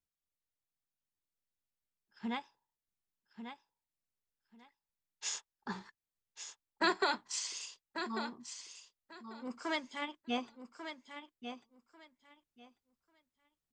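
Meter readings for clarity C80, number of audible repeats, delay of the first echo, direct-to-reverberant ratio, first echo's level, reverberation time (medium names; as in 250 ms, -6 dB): no reverb, 2, 1143 ms, no reverb, -9.0 dB, no reverb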